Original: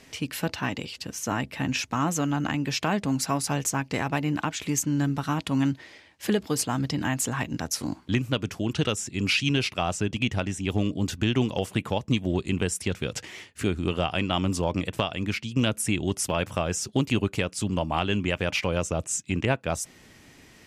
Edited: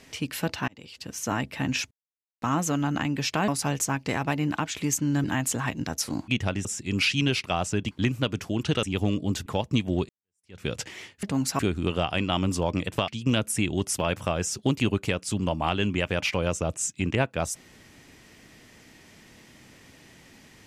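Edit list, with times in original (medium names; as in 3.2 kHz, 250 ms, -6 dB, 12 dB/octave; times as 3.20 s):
0.68–1.20 s: fade in
1.91 s: insert silence 0.51 s
2.97–3.33 s: move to 13.60 s
5.09–6.97 s: delete
8.01–8.93 s: swap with 10.19–10.56 s
11.19–11.83 s: delete
12.46–13.00 s: fade in exponential
15.09–15.38 s: delete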